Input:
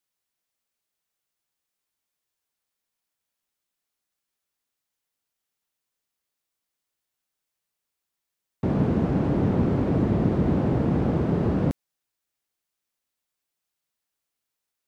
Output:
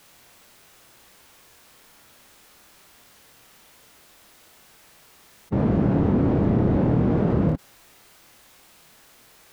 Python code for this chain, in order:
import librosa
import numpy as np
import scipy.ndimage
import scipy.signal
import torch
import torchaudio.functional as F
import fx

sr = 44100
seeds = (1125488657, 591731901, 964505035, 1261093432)

p1 = fx.high_shelf(x, sr, hz=3400.0, db=-8.0)
p2 = fx.stretch_vocoder(p1, sr, factor=0.64)
p3 = p2 + fx.room_early_taps(p2, sr, ms=(25, 57), db=(-3.5, -4.5), dry=0)
y = fx.env_flatten(p3, sr, amount_pct=50)